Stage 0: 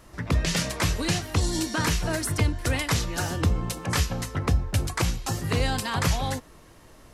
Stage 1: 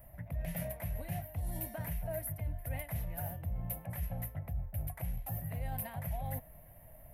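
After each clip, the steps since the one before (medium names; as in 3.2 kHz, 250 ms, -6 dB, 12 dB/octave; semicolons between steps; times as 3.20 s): FFT filter 150 Hz 0 dB, 400 Hz -21 dB, 640 Hz +4 dB, 1.2 kHz -19 dB, 2 kHz -7 dB, 4.6 kHz -27 dB, 7.3 kHz -25 dB, 13 kHz +14 dB; reverse; compression 6:1, threshold -33 dBFS, peak gain reduction 15 dB; reverse; trim -2 dB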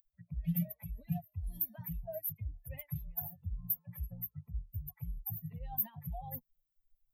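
expander on every frequency bin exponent 3; FFT filter 120 Hz 0 dB, 170 Hz +12 dB, 330 Hz -13 dB, 750 Hz +1 dB, 1.3 kHz -11 dB, 2.1 kHz -6 dB, 3.2 kHz -2 dB, 8.8 kHz -21 dB, 13 kHz +12 dB; trim +2.5 dB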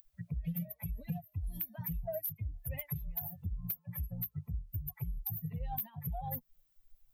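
compression 6:1, threshold -46 dBFS, peak gain reduction 17.5 dB; saturation -36.5 dBFS, distortion -23 dB; trim +11.5 dB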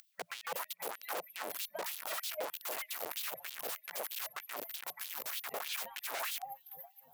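echo whose repeats swap between lows and highs 233 ms, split 1.1 kHz, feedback 80%, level -12 dB; integer overflow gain 38 dB; LFO high-pass sine 3.2 Hz 500–3500 Hz; trim +3.5 dB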